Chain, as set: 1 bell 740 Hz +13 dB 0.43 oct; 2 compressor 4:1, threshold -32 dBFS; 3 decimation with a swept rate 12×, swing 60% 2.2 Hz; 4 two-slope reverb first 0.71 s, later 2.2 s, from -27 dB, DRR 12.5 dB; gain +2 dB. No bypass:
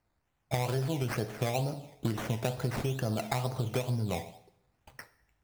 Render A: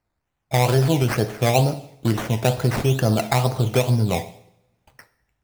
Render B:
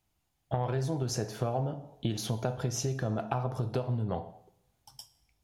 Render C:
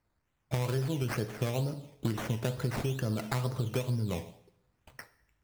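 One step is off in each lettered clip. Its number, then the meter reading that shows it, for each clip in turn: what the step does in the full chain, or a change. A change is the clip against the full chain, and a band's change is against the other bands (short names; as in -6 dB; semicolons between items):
2, mean gain reduction 10.5 dB; 3, distortion -7 dB; 1, 1 kHz band -3.0 dB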